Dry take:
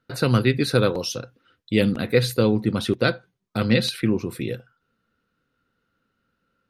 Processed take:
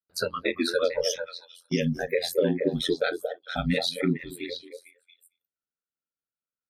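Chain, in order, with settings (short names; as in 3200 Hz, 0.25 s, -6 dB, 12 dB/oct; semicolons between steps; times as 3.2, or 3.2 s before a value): compressor 3:1, threshold -22 dBFS, peak gain reduction 8 dB; low shelf 110 Hz -5.5 dB; notches 60/120/180/240/300/360/420 Hz; spectral noise reduction 29 dB; limiter -21.5 dBFS, peak gain reduction 7 dB; high shelf 4500 Hz -6 dB; gate -51 dBFS, range -8 dB; on a send: delay with a stepping band-pass 0.226 s, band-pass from 580 Hz, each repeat 1.4 oct, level -3.5 dB; on the sum: ring modulator 43 Hz; gain +9 dB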